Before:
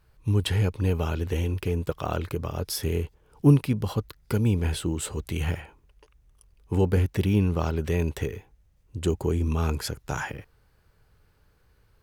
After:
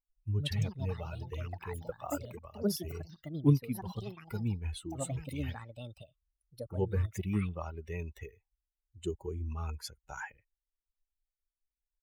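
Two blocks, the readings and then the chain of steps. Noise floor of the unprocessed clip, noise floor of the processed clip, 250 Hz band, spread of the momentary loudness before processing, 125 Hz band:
-63 dBFS, under -85 dBFS, -9.0 dB, 9 LU, -9.5 dB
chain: per-bin expansion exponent 2; echoes that change speed 0.194 s, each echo +6 st, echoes 2, each echo -6 dB; gain -6 dB

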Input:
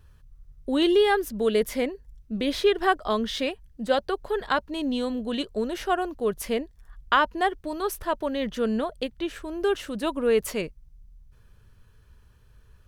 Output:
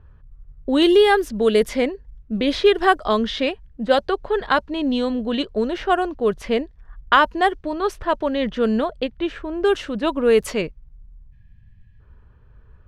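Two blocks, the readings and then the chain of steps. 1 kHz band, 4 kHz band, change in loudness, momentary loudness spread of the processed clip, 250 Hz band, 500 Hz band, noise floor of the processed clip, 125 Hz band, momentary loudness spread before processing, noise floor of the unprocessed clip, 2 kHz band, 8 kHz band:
+6.0 dB, +5.5 dB, +6.0 dB, 10 LU, +6.0 dB, +6.0 dB, -50 dBFS, +6.0 dB, 10 LU, -56 dBFS, +6.0 dB, n/a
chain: low-pass opened by the level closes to 1500 Hz, open at -17.5 dBFS; spectral repair 11.1–11.98, 220–1600 Hz before; short-mantissa float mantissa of 8-bit; gain +6 dB

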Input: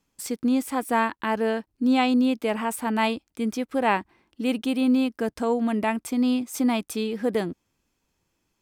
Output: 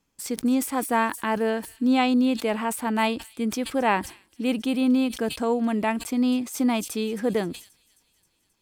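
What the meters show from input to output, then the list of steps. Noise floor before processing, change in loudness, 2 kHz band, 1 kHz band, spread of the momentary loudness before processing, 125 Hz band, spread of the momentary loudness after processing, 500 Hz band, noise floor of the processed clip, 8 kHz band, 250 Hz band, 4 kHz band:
-76 dBFS, 0.0 dB, 0.0 dB, 0.0 dB, 7 LU, n/a, 7 LU, 0.0 dB, -70 dBFS, +3.0 dB, 0.0 dB, +1.0 dB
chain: thin delay 0.266 s, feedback 63%, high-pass 5100 Hz, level -15 dB; sustainer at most 140 dB/s

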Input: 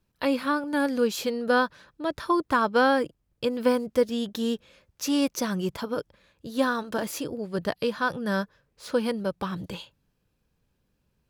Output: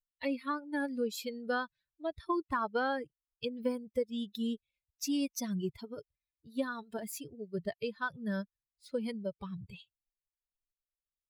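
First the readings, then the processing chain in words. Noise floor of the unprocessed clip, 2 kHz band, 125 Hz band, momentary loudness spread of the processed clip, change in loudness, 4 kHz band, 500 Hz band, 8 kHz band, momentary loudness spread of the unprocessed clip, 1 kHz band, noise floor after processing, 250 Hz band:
-74 dBFS, -10.0 dB, -7.5 dB, 11 LU, -10.0 dB, -10.0 dB, -11.0 dB, -7.0 dB, 11 LU, -10.5 dB, under -85 dBFS, -9.0 dB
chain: per-bin expansion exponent 2; compressor 2.5:1, threshold -28 dBFS, peak gain reduction 6.5 dB; gain -2.5 dB

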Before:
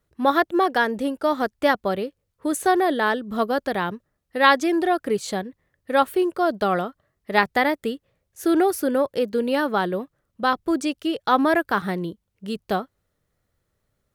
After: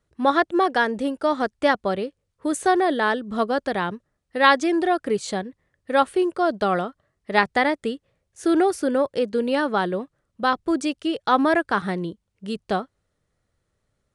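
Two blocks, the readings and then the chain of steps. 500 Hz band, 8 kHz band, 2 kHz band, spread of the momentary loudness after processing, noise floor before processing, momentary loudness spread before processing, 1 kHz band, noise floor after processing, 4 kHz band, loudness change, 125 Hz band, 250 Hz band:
0.0 dB, -1.0 dB, 0.0 dB, 12 LU, -76 dBFS, 12 LU, 0.0 dB, -76 dBFS, 0.0 dB, 0.0 dB, 0.0 dB, 0.0 dB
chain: downsampling 22050 Hz

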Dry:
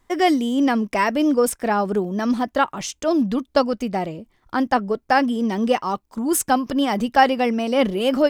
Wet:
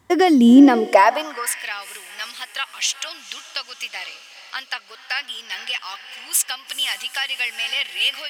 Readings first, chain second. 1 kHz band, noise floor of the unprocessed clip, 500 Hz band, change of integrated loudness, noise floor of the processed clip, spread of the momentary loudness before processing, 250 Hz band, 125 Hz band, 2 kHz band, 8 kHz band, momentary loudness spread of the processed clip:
-2.5 dB, -66 dBFS, -3.5 dB, +1.5 dB, -45 dBFS, 7 LU, +1.5 dB, under -10 dB, +2.0 dB, +5.0 dB, 19 LU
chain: wow and flutter 25 cents; diffused feedback echo 0.46 s, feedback 54%, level -15 dB; compressor 10:1, threshold -18 dBFS, peak gain reduction 10 dB; high-pass sweep 95 Hz -> 2600 Hz, 0.1–1.65; gain +6 dB

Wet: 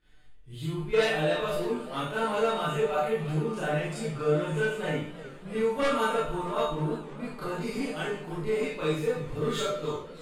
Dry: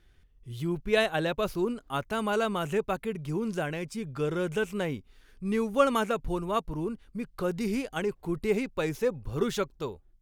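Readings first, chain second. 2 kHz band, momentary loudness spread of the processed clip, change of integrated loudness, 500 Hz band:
+1.5 dB, 9 LU, +1.0 dB, +1.5 dB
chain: Bessel low-pass 9300 Hz, order 2; low shelf 210 Hz -4 dB; in parallel at +1 dB: level quantiser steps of 22 dB; on the sum: bell 5700 Hz -12 dB 0.2 oct; Schroeder reverb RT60 0.51 s, combs from 25 ms, DRR -9.5 dB; soft clip -10 dBFS, distortion -11 dB; resonator 150 Hz, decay 0.27 s, harmonics all, mix 90%; warbling echo 0.311 s, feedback 77%, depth 117 cents, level -18.5 dB; gain +1.5 dB

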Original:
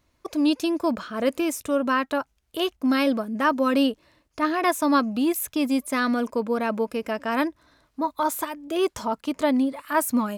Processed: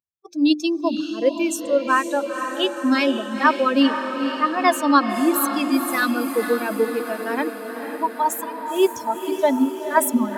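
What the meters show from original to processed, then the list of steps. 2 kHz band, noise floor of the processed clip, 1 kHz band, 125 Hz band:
+5.0 dB, -34 dBFS, +5.0 dB, n/a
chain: per-bin expansion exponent 2; HPF 210 Hz 12 dB/oct; notches 50/100/150/200/250/300/350 Hz; diffused feedback echo 0.494 s, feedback 65%, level -8 dB; gain +8 dB

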